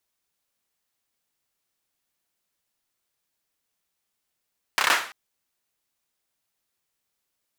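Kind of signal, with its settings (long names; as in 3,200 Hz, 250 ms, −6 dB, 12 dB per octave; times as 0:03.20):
synth clap length 0.34 s, bursts 5, apart 30 ms, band 1,400 Hz, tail 0.43 s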